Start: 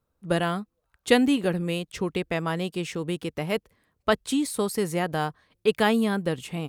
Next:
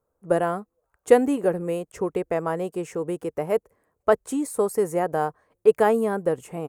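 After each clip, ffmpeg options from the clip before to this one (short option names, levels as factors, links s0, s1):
-af "firequalizer=gain_entry='entry(220,0);entry(440,11);entry(3600,-14);entry(6800,3)':delay=0.05:min_phase=1,volume=0.596"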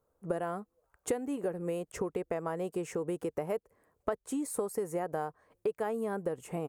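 -af "acompressor=threshold=0.0282:ratio=6"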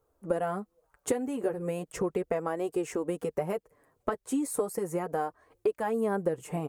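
-af "flanger=delay=2.3:depth=6.4:regen=-18:speed=0.36:shape=triangular,volume=2.24"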